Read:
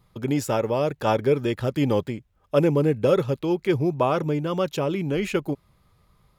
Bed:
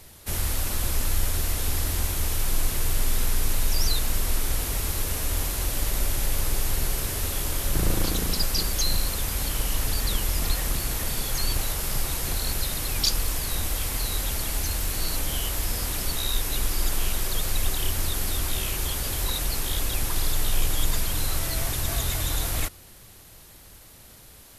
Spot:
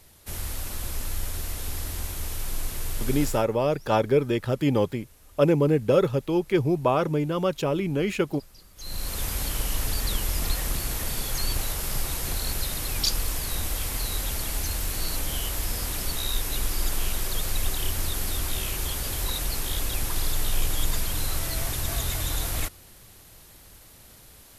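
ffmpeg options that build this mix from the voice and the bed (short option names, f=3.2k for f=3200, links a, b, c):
-filter_complex "[0:a]adelay=2850,volume=-0.5dB[a];[1:a]volume=19.5dB,afade=t=out:st=3.25:d=0.21:silence=0.0891251,afade=t=in:st=8.76:d=0.47:silence=0.0530884[b];[a][b]amix=inputs=2:normalize=0"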